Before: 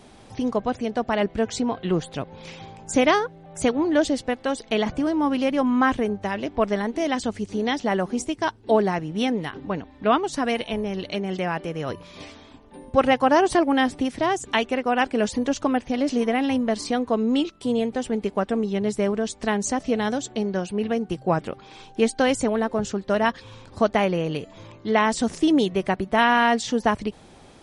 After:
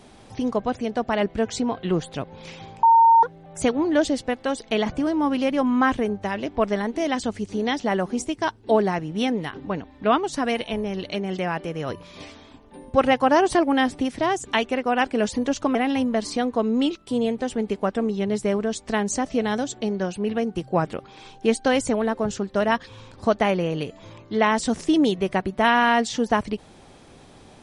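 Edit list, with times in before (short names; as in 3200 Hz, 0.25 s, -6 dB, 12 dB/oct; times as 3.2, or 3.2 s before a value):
2.83–3.23 bleep 915 Hz -10.5 dBFS
15.75–16.29 cut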